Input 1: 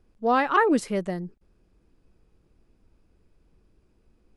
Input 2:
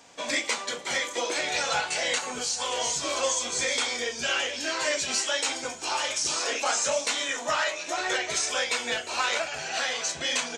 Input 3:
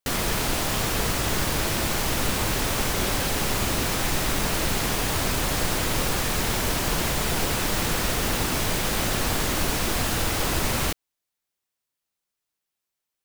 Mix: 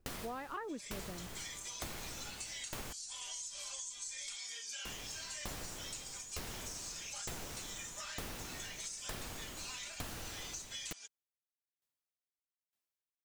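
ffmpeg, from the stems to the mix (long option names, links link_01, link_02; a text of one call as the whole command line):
ffmpeg -i stem1.wav -i stem2.wav -i stem3.wav -filter_complex "[0:a]volume=-8dB[link_01];[1:a]aderivative,acompressor=threshold=-35dB:ratio=2.5,aecho=1:1:5:0.83,adelay=500,volume=-6.5dB[link_02];[2:a]aeval=exprs='val(0)*pow(10,-34*if(lt(mod(1.1*n/s,1),2*abs(1.1)/1000),1-mod(1.1*n/s,1)/(2*abs(1.1)/1000),(mod(1.1*n/s,1)-2*abs(1.1)/1000)/(1-2*abs(1.1)/1000))/20)':channel_layout=same,volume=-4.5dB,asplit=3[link_03][link_04][link_05];[link_03]atrim=end=2.93,asetpts=PTS-STARTPTS,afade=type=out:start_time=2.926:duration=0.004:curve=hsin[link_06];[link_04]atrim=start=2.93:end=4.85,asetpts=PTS-STARTPTS,volume=0[link_07];[link_05]atrim=start=4.85,asetpts=PTS-STARTPTS,afade=type=in:duration=0.004:curve=hsin[link_08];[link_06][link_07][link_08]concat=n=3:v=0:a=1[link_09];[link_01][link_02][link_09]amix=inputs=3:normalize=0,acompressor=threshold=-41dB:ratio=6" out.wav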